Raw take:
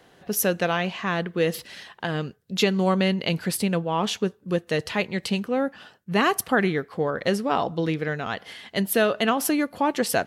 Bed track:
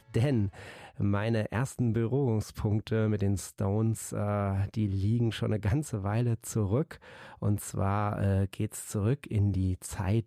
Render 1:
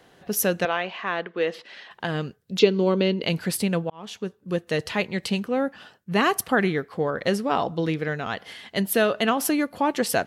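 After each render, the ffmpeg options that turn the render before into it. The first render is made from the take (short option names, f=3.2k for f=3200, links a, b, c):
-filter_complex "[0:a]asettb=1/sr,asplit=3[a][b][c];[a]atrim=end=0.654[d];[b]atrim=start=0.65:end=1.91,asetpts=PTS-STARTPTS,afade=t=in:d=0.004:c=qsin,afade=t=out:st=1.256:d=0.004:c=qsin,highpass=370,lowpass=3.5k[e];[c]atrim=start=1.906[f];[d][e]acrossfade=d=0.004:c1=hsin:c2=qsin[g];[g][f]acrossfade=d=0.004:c1=qsin:c2=hsin,asettb=1/sr,asplit=3[h][i][j];[h]atrim=end=2.594[k];[i]atrim=start=2.59:end=3.23,asetpts=PTS-STARTPTS,afade=t=in:d=0.004:c=qsin,afade=t=out:st=0.636:d=0.004:c=qsin,highpass=180,equalizer=f=310:t=q:w=4:g=9,equalizer=f=450:t=q:w=4:g=8,equalizer=f=740:t=q:w=4:g=-8,equalizer=f=1.2k:t=q:w=4:g=-5,equalizer=f=1.8k:t=q:w=4:g=-9,lowpass=f=5.5k:w=0.5412,lowpass=f=5.5k:w=1.3066[l];[j]atrim=start=3.226[m];[k][l]acrossfade=d=0.004:c1=hsin:c2=qsin[n];[n][m]acrossfade=d=0.004:c1=qsin:c2=hsin,asplit=2[o][p];[o]atrim=end=3.9,asetpts=PTS-STARTPTS,afade=t=out:st=3.896:d=0.004:c=hsin[q];[p]atrim=start=3.9,asetpts=PTS-STARTPTS,afade=t=in:d=1.03:c=qsin[r];[q][r]concat=n=2:v=0:a=1"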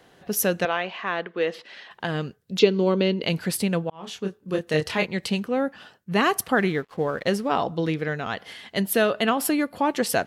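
-filter_complex "[0:a]asettb=1/sr,asplit=3[a][b][c];[a]atrim=end=3.934[d];[b]atrim=start=3.93:end=5.06,asetpts=PTS-STARTPTS,afade=t=in:d=0.004:c=qsin,afade=t=out:st=1.126:d=0.004:c=qsin,asplit=2[e][f];[f]adelay=26,volume=-4dB[g];[e][g]amix=inputs=2:normalize=0,atrim=end_sample=49833[h];[c]atrim=start=5.056[i];[d][h]acrossfade=d=0.004:c1=hsin:c2=qsin[j];[j][i]acrossfade=d=0.004:c1=qsin:c2=hsin,asettb=1/sr,asplit=3[k][l][m];[k]atrim=end=6.554[n];[l]atrim=start=6.55:end=7.48,asetpts=PTS-STARTPTS,afade=t=in:d=0.004:c=qsin,afade=t=out:st=0.926:d=0.004:c=qsin,aeval=exprs='sgn(val(0))*max(abs(val(0))-0.00299,0)':c=same[o];[m]atrim=start=7.476[p];[n][o]acrossfade=d=0.004:c1=hsin:c2=qsin[q];[q][p]acrossfade=d=0.004:c1=qsin:c2=hsin,asettb=1/sr,asplit=3[r][s][t];[r]atrim=end=9.104[u];[s]atrim=start=9.1:end=9.78,asetpts=PTS-STARTPTS,afade=t=in:d=0.004:c=qsin,afade=t=out:st=0.676:d=0.004:c=qsin,bandreject=f=6.1k:w=6.7[v];[t]atrim=start=9.776[w];[u][v]acrossfade=d=0.004:c1=hsin:c2=qsin[x];[x][w]acrossfade=d=0.004:c1=qsin:c2=hsin"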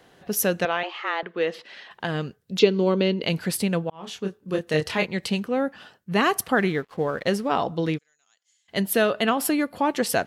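-filter_complex "[0:a]asettb=1/sr,asplit=3[a][b][c];[a]atrim=end=0.834[d];[b]atrim=start=0.83:end=1.23,asetpts=PTS-STARTPTS,afade=t=in:d=0.004:c=qsin,afade=t=out:st=0.396:d=0.004:c=qsin,afreqshift=160[e];[c]atrim=start=1.226[f];[d][e]acrossfade=d=0.004:c1=hsin:c2=qsin[g];[g][f]acrossfade=d=0.004:c1=qsin:c2=hsin,asplit=3[h][i][j];[h]afade=t=out:st=7.97:d=0.02[k];[i]bandpass=f=6.9k:t=q:w=17,afade=t=in:st=7.97:d=0.02,afade=t=out:st=8.68:d=0.02[l];[j]afade=t=in:st=8.68:d=0.02[m];[k][l][m]amix=inputs=3:normalize=0"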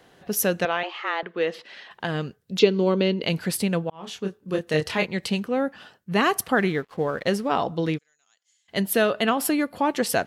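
-af anull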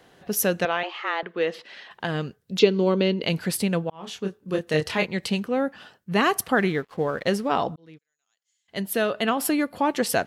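-filter_complex "[0:a]asplit=2[a][b];[a]atrim=end=7.76,asetpts=PTS-STARTPTS,afade=t=out:st=7.756:d=0.004:c=hsin[c];[b]atrim=start=7.76,asetpts=PTS-STARTPTS,afade=t=in:d=1.8[d];[c][d]concat=n=2:v=0:a=1"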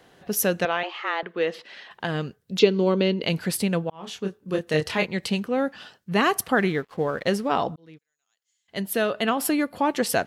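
-filter_complex "[0:a]asettb=1/sr,asplit=3[a][b][c];[a]atrim=end=5.584[d];[b]atrim=start=5.58:end=6.1,asetpts=PTS-STARTPTS,afade=t=in:d=0.004:c=qsin,afade=t=out:st=0.516:d=0.004:c=qsin,equalizer=f=4.7k:t=o:w=1.8:g=6[e];[c]atrim=start=6.096[f];[d][e]acrossfade=d=0.004:c1=hsin:c2=qsin[g];[g][f]acrossfade=d=0.004:c1=qsin:c2=hsin"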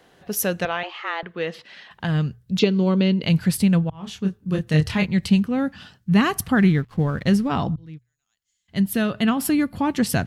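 -af "bandreject=f=60:t=h:w=6,bandreject=f=120:t=h:w=6,asubboost=boost=11:cutoff=150"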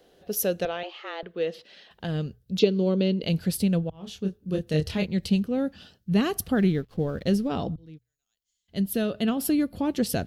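-af "equalizer=f=125:t=o:w=1:g=-10,equalizer=f=250:t=o:w=1:g=-3,equalizer=f=500:t=o:w=1:g=4,equalizer=f=1k:t=o:w=1:g=-11,equalizer=f=2k:t=o:w=1:g=-9,equalizer=f=8k:t=o:w=1:g=-6"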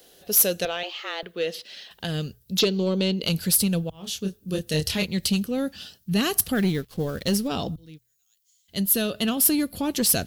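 -af "crystalizer=i=5.5:c=0,asoftclip=type=tanh:threshold=-13.5dB"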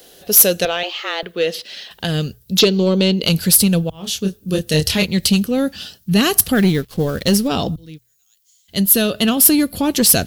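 -af "volume=8.5dB"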